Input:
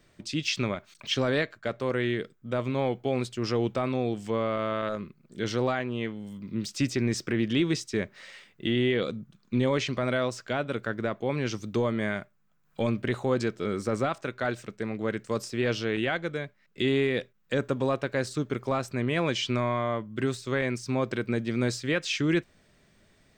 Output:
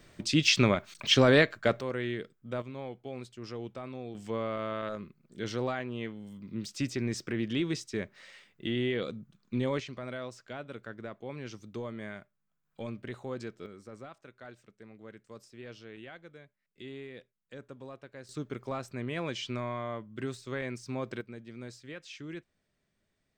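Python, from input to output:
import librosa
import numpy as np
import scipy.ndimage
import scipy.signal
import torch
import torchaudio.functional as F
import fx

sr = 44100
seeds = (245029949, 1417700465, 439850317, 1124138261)

y = fx.gain(x, sr, db=fx.steps((0.0, 5.0), (1.81, -6.0), (2.62, -13.0), (4.15, -5.5), (9.8, -12.0), (13.66, -19.0), (18.29, -8.0), (21.21, -17.0)))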